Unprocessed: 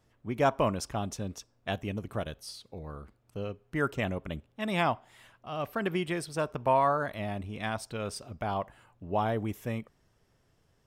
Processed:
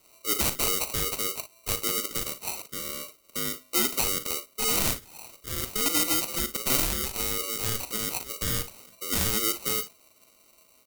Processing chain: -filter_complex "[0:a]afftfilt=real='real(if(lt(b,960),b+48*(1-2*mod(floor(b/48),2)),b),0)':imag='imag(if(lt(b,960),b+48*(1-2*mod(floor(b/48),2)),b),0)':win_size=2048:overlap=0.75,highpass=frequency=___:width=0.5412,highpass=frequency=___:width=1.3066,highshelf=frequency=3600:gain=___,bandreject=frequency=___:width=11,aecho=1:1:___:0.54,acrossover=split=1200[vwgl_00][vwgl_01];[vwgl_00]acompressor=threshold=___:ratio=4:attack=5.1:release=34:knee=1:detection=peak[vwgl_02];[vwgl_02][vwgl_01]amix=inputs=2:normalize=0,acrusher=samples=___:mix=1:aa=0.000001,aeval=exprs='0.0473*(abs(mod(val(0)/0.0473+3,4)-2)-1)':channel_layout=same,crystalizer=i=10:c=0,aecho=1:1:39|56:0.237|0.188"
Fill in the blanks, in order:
230, 230, -3, 2300, 2.2, -51dB, 26